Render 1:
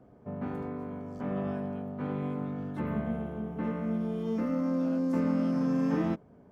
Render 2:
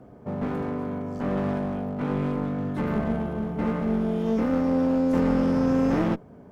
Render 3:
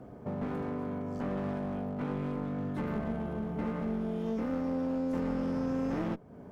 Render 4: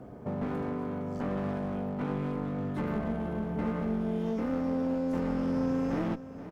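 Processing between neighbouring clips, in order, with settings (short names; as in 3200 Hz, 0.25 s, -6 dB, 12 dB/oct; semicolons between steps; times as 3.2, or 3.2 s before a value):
one-sided clip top -36.5 dBFS; gain +8.5 dB
compressor 2:1, threshold -37 dBFS, peak gain reduction 10.5 dB
echo 0.476 s -14.5 dB; gain +2 dB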